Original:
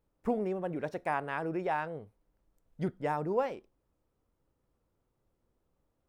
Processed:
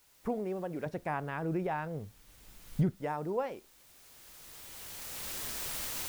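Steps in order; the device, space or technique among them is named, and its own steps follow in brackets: cheap recorder with automatic gain (white noise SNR 26 dB; recorder AGC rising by 14 dB/s); 0.86–2.96 s: tone controls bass +10 dB, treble -2 dB; trim -3.5 dB

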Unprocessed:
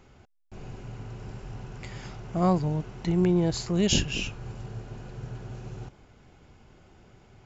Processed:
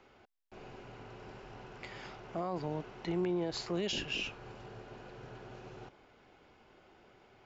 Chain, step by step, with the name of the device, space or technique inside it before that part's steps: DJ mixer with the lows and highs turned down (three-band isolator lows -15 dB, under 280 Hz, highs -20 dB, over 5.3 kHz; peak limiter -24.5 dBFS, peak gain reduction 11.5 dB); trim -1.5 dB

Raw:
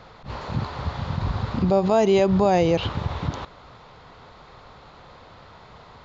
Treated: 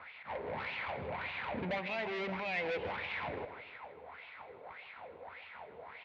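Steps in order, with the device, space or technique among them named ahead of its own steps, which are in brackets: wah-wah guitar rig (wah-wah 1.7 Hz 390–2700 Hz, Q 4.6; valve stage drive 43 dB, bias 0.5; cabinet simulation 79–4000 Hz, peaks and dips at 80 Hz +9 dB, 120 Hz -4 dB, 370 Hz -6 dB, 1.2 kHz -8 dB, 2.2 kHz +8 dB); 0.76–1.83 s: band-stop 5.3 kHz, Q 7.5; feedback delay 158 ms, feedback 35%, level -12.5 dB; trim +9.5 dB

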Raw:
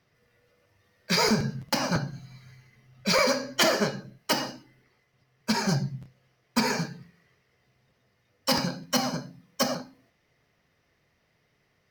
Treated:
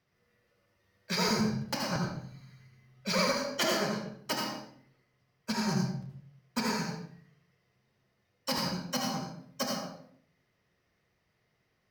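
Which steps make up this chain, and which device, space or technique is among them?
bathroom (reverberation RT60 0.60 s, pre-delay 70 ms, DRR 1 dB); trim -8 dB

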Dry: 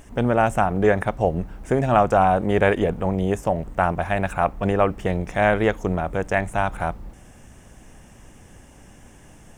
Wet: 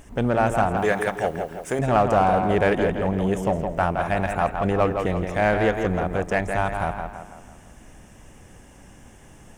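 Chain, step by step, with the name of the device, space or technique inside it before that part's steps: 0.77–1.79 s: tilt EQ +3 dB/octave; tape echo 166 ms, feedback 49%, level -5.5 dB, low-pass 4 kHz; parallel distortion (in parallel at -7 dB: hard clipper -18.5 dBFS, distortion -8 dB); on the sum: trim -4 dB

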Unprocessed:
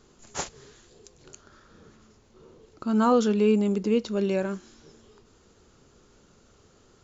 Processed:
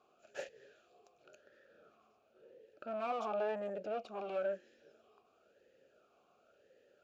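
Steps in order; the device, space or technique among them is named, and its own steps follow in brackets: talk box (valve stage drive 30 dB, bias 0.65; talking filter a-e 0.96 Hz); 3.20–3.70 s: high-order bell 930 Hz +12.5 dB 1 oct; trim +6.5 dB

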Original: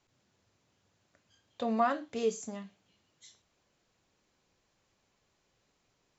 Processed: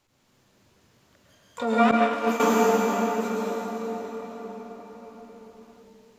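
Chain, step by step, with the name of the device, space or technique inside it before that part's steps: shimmer-style reverb (harmony voices +12 st -6 dB; reverberation RT60 5.8 s, pre-delay 100 ms, DRR -7 dB); 1.91–2.40 s: expander -16 dBFS; trim +4 dB

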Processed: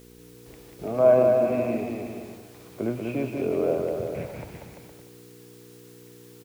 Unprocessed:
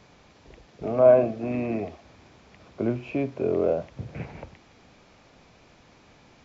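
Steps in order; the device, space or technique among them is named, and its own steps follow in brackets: gate with hold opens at -43 dBFS; video cassette with head-switching buzz (mains buzz 60 Hz, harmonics 8, -48 dBFS -1 dB/octave; white noise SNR 29 dB); bass shelf 170 Hz -3 dB; bouncing-ball echo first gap 190 ms, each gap 0.8×, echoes 5; trim -1.5 dB

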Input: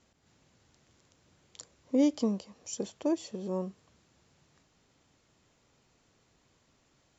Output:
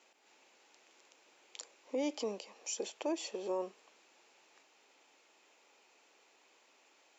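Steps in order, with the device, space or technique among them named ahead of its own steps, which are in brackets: 2.13–2.98 s: dynamic bell 1 kHz, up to -5 dB, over -50 dBFS, Q 1.3; laptop speaker (high-pass 350 Hz 24 dB/octave; peaking EQ 850 Hz +6 dB 0.25 oct; peaking EQ 2.5 kHz +8 dB 0.45 oct; peak limiter -29.5 dBFS, peak gain reduction 9 dB); trim +2 dB

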